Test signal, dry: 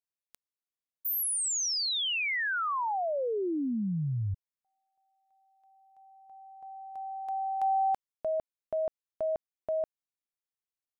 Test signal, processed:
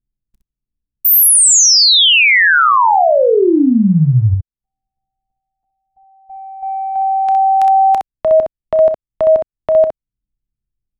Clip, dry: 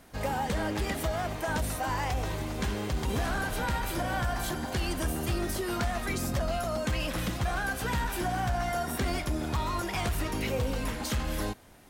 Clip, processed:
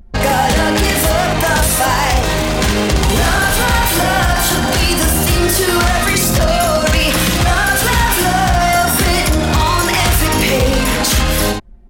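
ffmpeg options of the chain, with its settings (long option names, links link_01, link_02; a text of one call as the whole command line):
ffmpeg -i in.wav -filter_complex "[0:a]acrossover=split=300|1800|3100[link_01][link_02][link_03][link_04];[link_01]acompressor=mode=upward:threshold=-54dB:ratio=1.5:attack=56:release=178:knee=2.83:detection=peak[link_05];[link_05][link_02][link_03][link_04]amix=inputs=4:normalize=0,anlmdn=0.251,apsyclip=23dB,highshelf=frequency=2100:gain=7.5,acompressor=threshold=-10dB:ratio=4:attack=0.4:release=185:knee=6:detection=peak,aecho=1:1:31|63:0.15|0.562" out.wav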